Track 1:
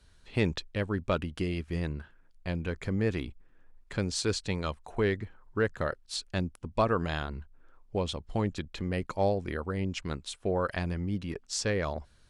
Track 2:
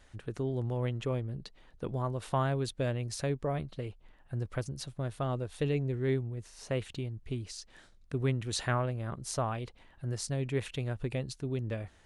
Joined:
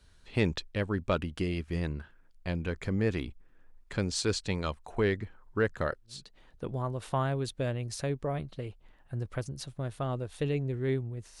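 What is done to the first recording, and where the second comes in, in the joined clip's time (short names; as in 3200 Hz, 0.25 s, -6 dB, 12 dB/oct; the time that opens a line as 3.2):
track 1
6.18 switch to track 2 from 1.38 s, crossfade 0.38 s quadratic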